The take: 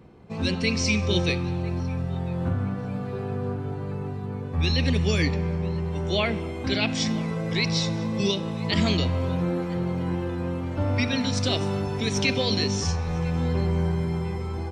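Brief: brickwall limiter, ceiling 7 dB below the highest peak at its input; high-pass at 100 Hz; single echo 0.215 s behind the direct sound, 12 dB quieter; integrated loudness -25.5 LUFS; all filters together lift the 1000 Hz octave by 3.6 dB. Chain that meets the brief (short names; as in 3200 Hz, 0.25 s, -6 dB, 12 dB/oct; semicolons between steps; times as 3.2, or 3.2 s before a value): HPF 100 Hz; bell 1000 Hz +4.5 dB; limiter -16.5 dBFS; echo 0.215 s -12 dB; gain +2 dB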